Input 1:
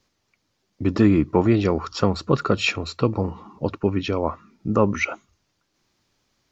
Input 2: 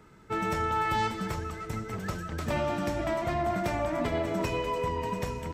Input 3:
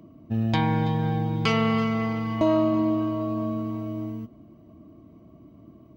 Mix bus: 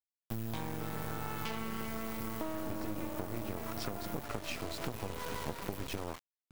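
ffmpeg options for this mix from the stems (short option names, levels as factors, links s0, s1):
-filter_complex "[0:a]acompressor=threshold=0.0631:ratio=5,adelay=1850,volume=1.06[s0];[1:a]highshelf=f=4800:g=-10,aeval=exprs='val(0)+0.00794*(sin(2*PI*50*n/s)+sin(2*PI*2*50*n/s)/2+sin(2*PI*3*50*n/s)/3+sin(2*PI*4*50*n/s)/4+sin(2*PI*5*50*n/s)/5)':c=same,adelay=500,volume=0.75[s1];[2:a]bandreject=f=50:t=h:w=6,bandreject=f=100:t=h:w=6,bandreject=f=150:t=h:w=6,volume=0.794[s2];[s0][s1][s2]amix=inputs=3:normalize=0,aexciter=amount=11:drive=7.7:freq=10000,acrusher=bits=3:dc=4:mix=0:aa=0.000001,acompressor=threshold=0.02:ratio=6"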